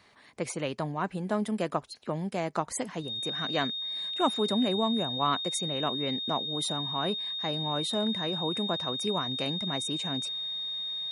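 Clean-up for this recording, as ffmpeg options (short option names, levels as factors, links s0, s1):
-af "bandreject=f=3700:w=30"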